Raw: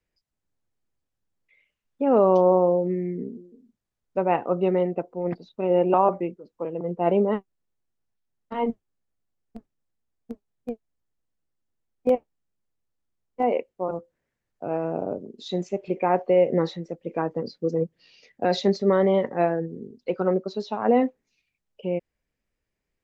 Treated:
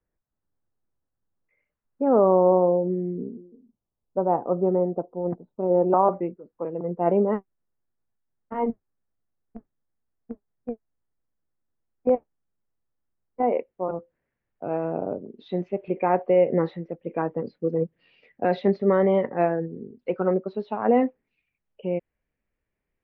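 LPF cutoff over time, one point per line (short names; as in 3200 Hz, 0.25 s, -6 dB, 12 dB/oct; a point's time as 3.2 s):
LPF 24 dB/oct
2.08 s 1600 Hz
2.76 s 1100 Hz
5.69 s 1100 Hz
6.23 s 1900 Hz
13.41 s 1900 Hz
13.83 s 2700 Hz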